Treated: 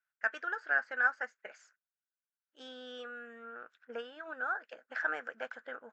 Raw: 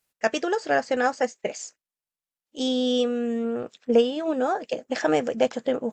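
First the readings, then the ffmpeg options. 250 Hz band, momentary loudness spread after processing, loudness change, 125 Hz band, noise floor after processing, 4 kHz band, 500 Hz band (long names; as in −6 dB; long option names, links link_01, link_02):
−29.0 dB, 18 LU, −11.0 dB, can't be measured, below −85 dBFS, −19.0 dB, −22.0 dB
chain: -af "bandpass=frequency=1500:width_type=q:width=9.1:csg=0,volume=5dB"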